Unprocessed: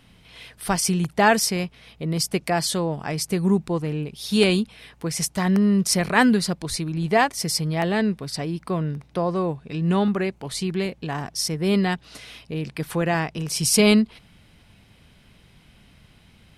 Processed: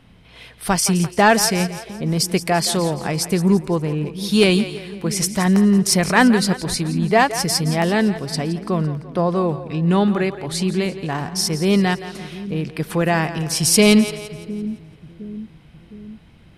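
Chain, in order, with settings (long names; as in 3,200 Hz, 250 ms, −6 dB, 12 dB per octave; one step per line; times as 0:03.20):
on a send: echo with a time of its own for lows and highs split 340 Hz, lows 711 ms, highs 170 ms, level −13 dB
on the sum: soft clipping −6.5 dBFS, distortion −25 dB
one half of a high-frequency compander decoder only
level +4.5 dB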